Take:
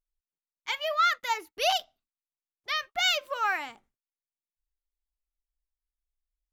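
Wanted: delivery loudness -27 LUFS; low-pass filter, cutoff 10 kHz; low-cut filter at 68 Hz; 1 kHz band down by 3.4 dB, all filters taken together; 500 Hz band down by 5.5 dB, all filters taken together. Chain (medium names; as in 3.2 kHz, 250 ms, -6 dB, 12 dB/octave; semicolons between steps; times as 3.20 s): high-pass 68 Hz; low-pass 10 kHz; peaking EQ 500 Hz -6 dB; peaking EQ 1 kHz -3.5 dB; trim +2.5 dB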